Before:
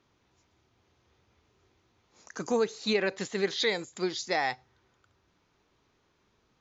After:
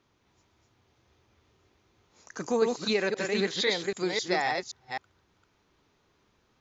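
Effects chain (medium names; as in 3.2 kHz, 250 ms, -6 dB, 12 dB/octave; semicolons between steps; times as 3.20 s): chunks repeated in reverse 262 ms, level -3 dB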